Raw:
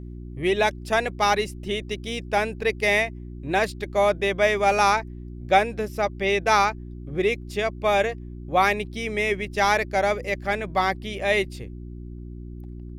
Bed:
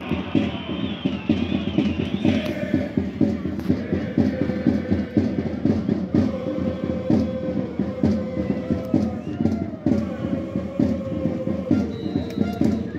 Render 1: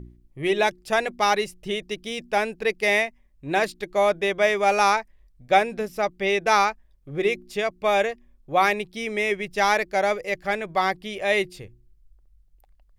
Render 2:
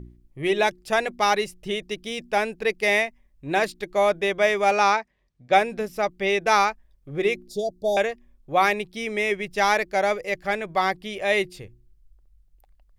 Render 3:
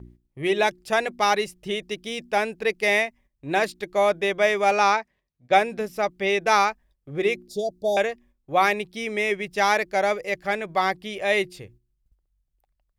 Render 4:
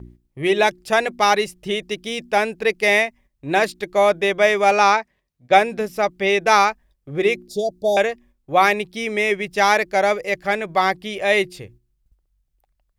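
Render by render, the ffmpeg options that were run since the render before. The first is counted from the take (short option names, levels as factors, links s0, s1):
-af "bandreject=f=60:t=h:w=4,bandreject=f=120:t=h:w=4,bandreject=f=180:t=h:w=4,bandreject=f=240:t=h:w=4,bandreject=f=300:t=h:w=4,bandreject=f=360:t=h:w=4"
-filter_complex "[0:a]asettb=1/sr,asplit=3[s0][s1][s2];[s0]atrim=end=4.714[s3];[s1]atrim=start=4.71:end=5.53,asetpts=PTS-STARTPTS,afade=t=in:d=0.004:c=qsin,afade=t=out:st=0.816:d=0.004:c=qsin,highpass=100,lowpass=5900[s4];[s2]atrim=start=5.526[s5];[s3][s4]acrossfade=d=0.004:c1=hsin:c2=qsin[s6];[s6][s5]acrossfade=d=0.004:c1=qsin:c2=hsin,asettb=1/sr,asplit=3[s7][s8][s9];[s7]atrim=end=7.484[s10];[s8]atrim=start=7.48:end=7.97,asetpts=PTS-STARTPTS,afade=t=in:d=0.004:c=qsin,afade=t=out:st=0.486:d=0.004:c=qsin,asuperstop=centerf=1700:order=12:qfactor=0.56[s11];[s9]atrim=start=7.966[s12];[s10][s11]acrossfade=d=0.004:c1=hsin:c2=qsin[s13];[s13][s12]acrossfade=d=0.004:c1=qsin:c2=hsin"
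-af "agate=range=0.355:threshold=0.00355:ratio=16:detection=peak,highpass=f=61:p=1"
-af "volume=1.68"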